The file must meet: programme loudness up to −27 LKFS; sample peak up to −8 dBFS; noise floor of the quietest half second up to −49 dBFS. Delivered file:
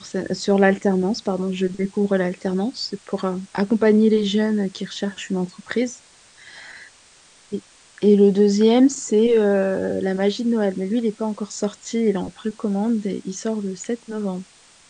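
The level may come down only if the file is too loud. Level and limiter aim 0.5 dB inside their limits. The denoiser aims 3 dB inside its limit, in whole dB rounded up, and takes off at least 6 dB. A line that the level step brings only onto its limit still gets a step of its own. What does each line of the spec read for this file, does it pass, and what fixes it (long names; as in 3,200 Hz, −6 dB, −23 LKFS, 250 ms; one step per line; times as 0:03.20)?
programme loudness −21.0 LKFS: out of spec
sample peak −4.0 dBFS: out of spec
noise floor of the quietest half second −51 dBFS: in spec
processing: level −6.5 dB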